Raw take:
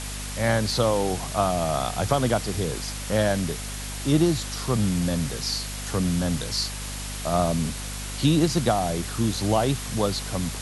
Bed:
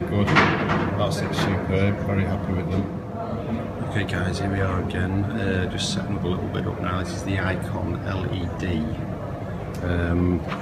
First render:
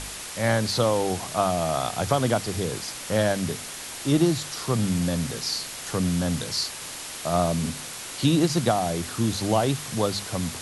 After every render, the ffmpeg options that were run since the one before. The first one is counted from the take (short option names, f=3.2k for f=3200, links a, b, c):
-af "bandreject=f=50:t=h:w=4,bandreject=f=100:t=h:w=4,bandreject=f=150:t=h:w=4,bandreject=f=200:t=h:w=4,bandreject=f=250:t=h:w=4"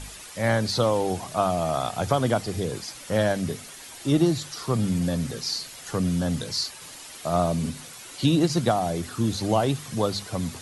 -af "afftdn=nr=9:nf=-37"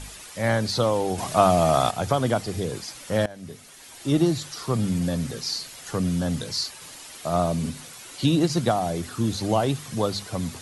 -filter_complex "[0:a]asettb=1/sr,asplit=3[a][b][c];[a]atrim=end=1.184[d];[b]atrim=start=1.18:end=1.91,asetpts=PTS-STARTPTS,afade=t=in:d=0.004:c=qsin,afade=t=out:st=0.726:d=0.004:c=qsin,acontrast=58[e];[c]atrim=start=1.906[f];[d][e]acrossfade=d=0.004:c1=hsin:c2=qsin[g];[g][f]acrossfade=d=0.004:c1=qsin:c2=hsin,asplit=2[h][i];[h]atrim=end=3.26,asetpts=PTS-STARTPTS,afade=t=out:st=3.256:d=0.004:c=hsin:silence=0.0891251[j];[i]atrim=start=3.26,asetpts=PTS-STARTPTS,afade=t=in:d=0.91:silence=0.0891251[k];[j][k]concat=n=2:v=0:a=1"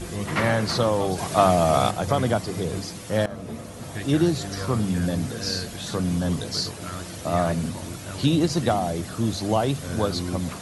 -filter_complex "[1:a]volume=-9dB[a];[0:a][a]amix=inputs=2:normalize=0"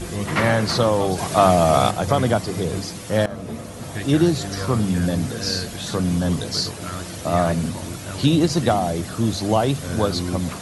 -af "volume=3.5dB,alimiter=limit=-3dB:level=0:latency=1"